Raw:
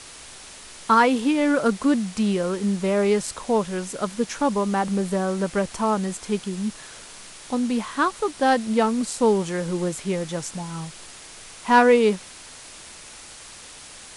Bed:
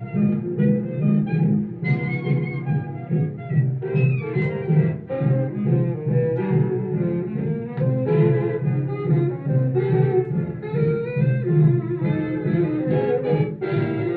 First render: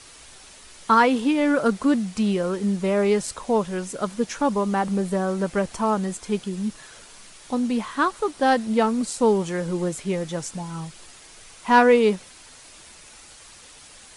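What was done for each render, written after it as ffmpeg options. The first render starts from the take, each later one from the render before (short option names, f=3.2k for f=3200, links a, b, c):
-af "afftdn=nr=6:nf=-43"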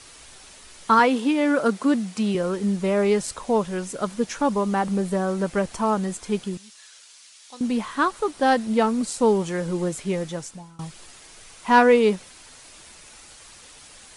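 -filter_complex "[0:a]asettb=1/sr,asplit=3[a][b][c];[a]atrim=end=0.994[d];[b]atrim=start=0.99:end=2.35,asetpts=PTS-STARTPTS,afade=t=in:d=0.004:c=qsin,afade=t=out:st=1.356:d=0.004:c=qsin,highpass=170[e];[c]atrim=start=2.346[f];[d][e]acrossfade=d=0.004:c1=hsin:c2=qsin[g];[g][f]acrossfade=d=0.004:c1=qsin:c2=hsin,asettb=1/sr,asplit=3[h][i][j];[h]atrim=end=6.574[k];[i]atrim=start=6.57:end=7.61,asetpts=PTS-STARTPTS,afade=t=in:d=0.004:c=qsin,afade=t=out:st=1.036:d=0.004:c=qsin,bandpass=f=5.3k:t=q:w=0.74[l];[j]atrim=start=7.606[m];[k][l]acrossfade=d=0.004:c1=hsin:c2=qsin[n];[n][m]acrossfade=d=0.004:c1=qsin:c2=hsin,asplit=2[o][p];[o]atrim=end=10.79,asetpts=PTS-STARTPTS,afade=t=out:st=10.22:d=0.57:silence=0.0668344[q];[p]atrim=start=10.79,asetpts=PTS-STARTPTS,afade=t=in:d=0.004:c=hsin:silence=0.0668344[r];[q][r]concat=n=2:v=0:a=1"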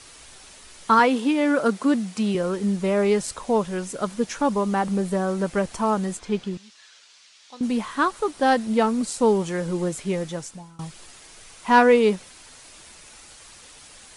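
-filter_complex "[0:a]asettb=1/sr,asplit=3[a][b][c];[a]atrim=end=6.194[d];[b]atrim=start=6.19:end=7.63,asetpts=PTS-STARTPTS,afade=t=in:d=0.004:c=qsin,afade=t=out:st=1.436:d=0.004:c=qsin,lowpass=5.2k[e];[c]atrim=start=7.626[f];[d][e]acrossfade=d=0.004:c1=hsin:c2=qsin[g];[g][f]acrossfade=d=0.004:c1=qsin:c2=hsin"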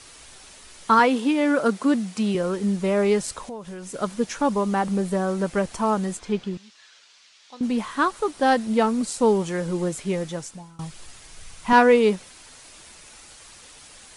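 -filter_complex "[0:a]asettb=1/sr,asplit=3[a][b][c];[a]atrim=end=3.454[d];[b]atrim=start=3.45:end=3.94,asetpts=PTS-STARTPTS,afade=t=in:d=0.004:c=qsin,afade=t=out:st=0.486:d=0.004:c=qsin,acompressor=threshold=-33dB:ratio=6:attack=3.2:release=140:knee=1:detection=peak[e];[c]atrim=start=3.936[f];[d][e]acrossfade=d=0.004:c1=hsin:c2=qsin[g];[g][f]acrossfade=d=0.004:c1=qsin:c2=hsin,asettb=1/sr,asplit=3[h][i][j];[h]atrim=end=6.324[k];[i]atrim=start=6.32:end=7.78,asetpts=PTS-STARTPTS,afade=t=in:d=0.004:c=qsin,afade=t=out:st=1.456:d=0.004:c=qsin,highshelf=f=9k:g=-9[l];[j]atrim=start=7.776[m];[k][l]acrossfade=d=0.004:c1=hsin:c2=qsin[n];[n][m]acrossfade=d=0.004:c1=qsin:c2=hsin,asettb=1/sr,asplit=3[o][p][q];[o]atrim=end=10.664[r];[p]atrim=start=10.66:end=11.73,asetpts=PTS-STARTPTS,afade=t=in:d=0.004:c=qsin,afade=t=out:st=1.066:d=0.004:c=qsin,asubboost=boost=10.5:cutoff=170[s];[q]atrim=start=11.726[t];[r][s]acrossfade=d=0.004:c1=hsin:c2=qsin[u];[u][t]acrossfade=d=0.004:c1=qsin:c2=hsin"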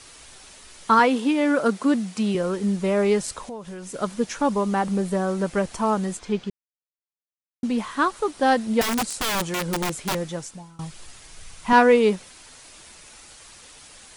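-filter_complex "[0:a]asettb=1/sr,asplit=3[a][b][c];[a]atrim=end=8.814[d];[b]atrim=start=8.81:end=10.15,asetpts=PTS-STARTPTS,afade=t=in:d=0.004:c=qsin,afade=t=out:st=1.336:d=0.004:c=qsin,aeval=exprs='(mod(9.44*val(0)+1,2)-1)/9.44':c=same[e];[c]atrim=start=10.146[f];[d][e]acrossfade=d=0.004:c1=hsin:c2=qsin[g];[g][f]acrossfade=d=0.004:c1=qsin:c2=hsin,asplit=3[h][i][j];[h]atrim=end=6.5,asetpts=PTS-STARTPTS,afade=t=out:st=6.496:d=0.004:c=hsin[k];[i]atrim=start=6.5:end=7.63,asetpts=PTS-STARTPTS,volume=0[l];[j]atrim=start=7.63,asetpts=PTS-STARTPTS,afade=t=in:d=0.004:c=hsin[m];[k][l][m]concat=n=3:v=0:a=1"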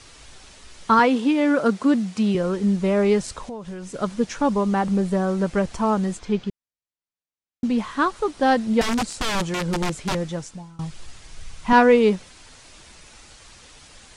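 -af "lowpass=7.5k,lowshelf=f=170:g=7.5"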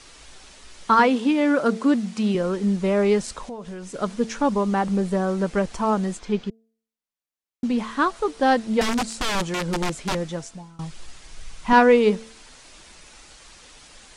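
-af "equalizer=f=97:w=1.6:g=-10,bandreject=f=224.1:t=h:w=4,bandreject=f=448.2:t=h:w=4,bandreject=f=672.3:t=h:w=4"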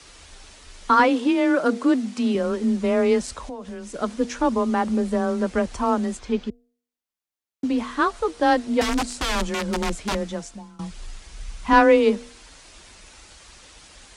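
-af "afreqshift=21"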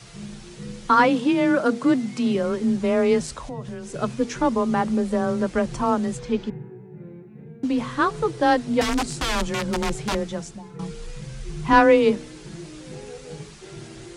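-filter_complex "[1:a]volume=-18dB[a];[0:a][a]amix=inputs=2:normalize=0"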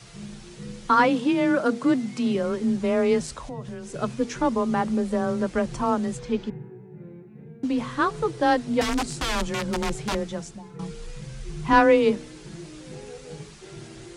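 -af "volume=-2dB"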